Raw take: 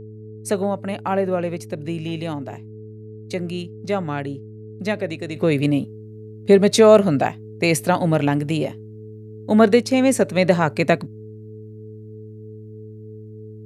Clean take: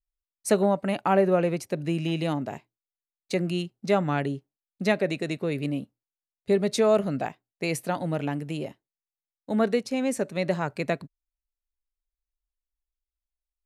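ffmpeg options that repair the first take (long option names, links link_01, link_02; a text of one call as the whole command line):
ffmpeg -i in.wav -af "bandreject=frequency=108.3:width_type=h:width=4,bandreject=frequency=216.6:width_type=h:width=4,bandreject=frequency=324.9:width_type=h:width=4,bandreject=frequency=433.2:width_type=h:width=4,bandreject=frequency=430:width=30,asetnsamples=nb_out_samples=441:pad=0,asendcmd='5.36 volume volume -10dB',volume=0dB" out.wav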